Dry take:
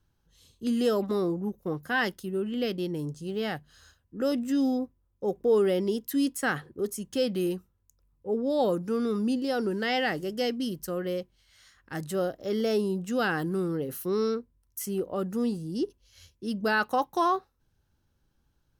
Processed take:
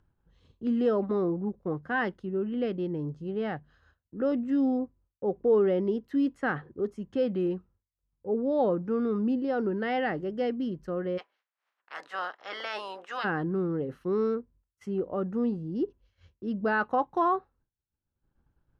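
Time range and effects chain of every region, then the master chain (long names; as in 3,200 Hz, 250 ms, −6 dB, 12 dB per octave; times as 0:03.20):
0:11.17–0:13.23: ceiling on every frequency bin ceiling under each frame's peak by 25 dB + high-pass filter 850 Hz
whole clip: low-pass filter 1,700 Hz 12 dB per octave; downward expander −54 dBFS; upward compression, threshold −47 dBFS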